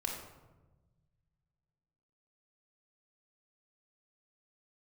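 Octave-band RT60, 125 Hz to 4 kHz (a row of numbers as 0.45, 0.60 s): 2.6, 1.8, 1.3, 1.0, 0.80, 0.60 s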